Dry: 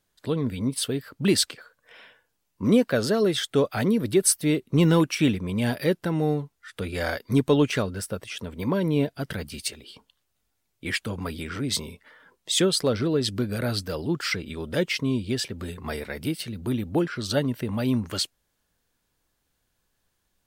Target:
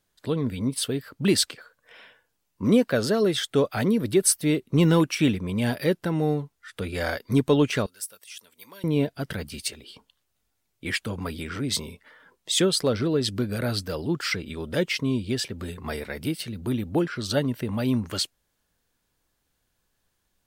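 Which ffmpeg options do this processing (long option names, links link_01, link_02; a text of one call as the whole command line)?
ffmpeg -i in.wav -filter_complex "[0:a]asettb=1/sr,asplit=3[link_01][link_02][link_03];[link_01]atrim=end=7.864[link_04];[link_02]atrim=start=7.86:end=8.84,asetpts=PTS-STARTPTS,afade=type=in:duration=0.004:curve=qsin,afade=type=out:start_time=0.976:duration=0.004:curve=qsin,aderivative[link_05];[link_03]atrim=start=8.836[link_06];[link_04][link_05]acrossfade=duration=0.004:curve1=hsin:curve2=qsin[link_07];[link_07][link_06]acrossfade=duration=0.004:curve1=qsin:curve2=hsin" out.wav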